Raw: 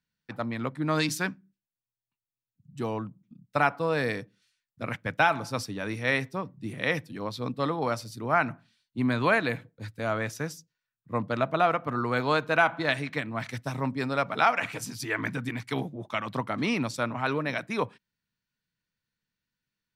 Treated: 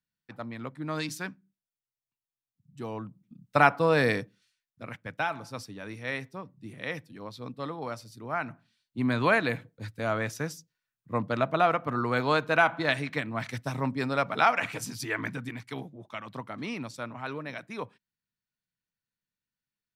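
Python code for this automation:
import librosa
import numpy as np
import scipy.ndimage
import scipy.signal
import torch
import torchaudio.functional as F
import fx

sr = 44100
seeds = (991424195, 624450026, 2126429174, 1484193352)

y = fx.gain(x, sr, db=fx.line((2.79, -6.5), (3.65, 4.0), (4.16, 4.0), (4.83, -7.5), (8.39, -7.5), (9.17, 0.0), (14.97, 0.0), (15.86, -8.0)))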